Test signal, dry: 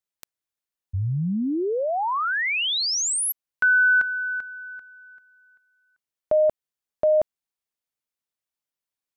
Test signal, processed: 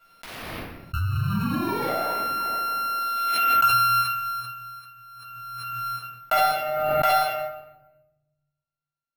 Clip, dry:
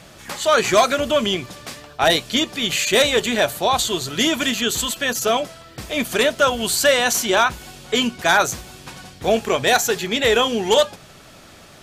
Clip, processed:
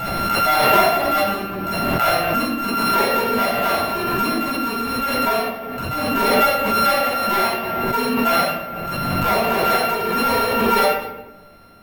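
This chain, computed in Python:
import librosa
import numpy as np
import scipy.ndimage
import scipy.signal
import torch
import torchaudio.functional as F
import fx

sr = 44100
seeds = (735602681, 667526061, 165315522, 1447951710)

y = np.r_[np.sort(x[:len(x) // 32 * 32].reshape(-1, 32), axis=1).ravel(), x[len(x) // 32 * 32:]]
y = scipy.signal.sosfilt(scipy.signal.butter(2, 3600.0, 'lowpass', fs=sr, output='sos'), y)
y = fx.low_shelf(y, sr, hz=250.0, db=-4.5)
y = fx.transient(y, sr, attack_db=6, sustain_db=-12)
y = fx.room_shoebox(y, sr, seeds[0], volume_m3=460.0, walls='mixed', distance_m=7.1)
y = np.repeat(y[::3], 3)[:len(y)]
y = fx.pre_swell(y, sr, db_per_s=21.0)
y = y * librosa.db_to_amplitude(-16.5)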